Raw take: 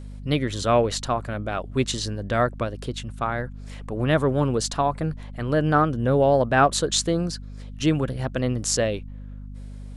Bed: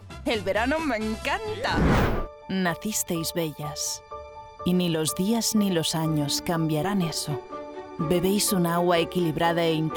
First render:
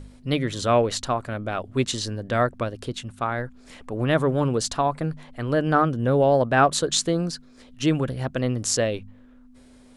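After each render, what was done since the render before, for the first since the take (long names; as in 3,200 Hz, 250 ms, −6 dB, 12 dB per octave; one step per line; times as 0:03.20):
hum removal 50 Hz, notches 4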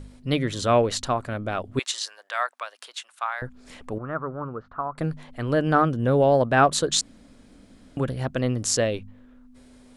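0:01.79–0:03.42: high-pass filter 840 Hz 24 dB per octave
0:03.98–0:04.98: transistor ladder low-pass 1,400 Hz, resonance 75%
0:07.01–0:07.97: fill with room tone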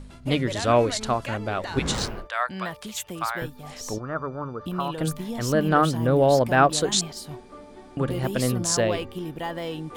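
mix in bed −8.5 dB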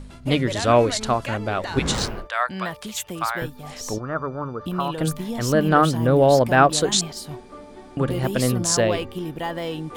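level +3 dB
brickwall limiter −3 dBFS, peak gain reduction 1.5 dB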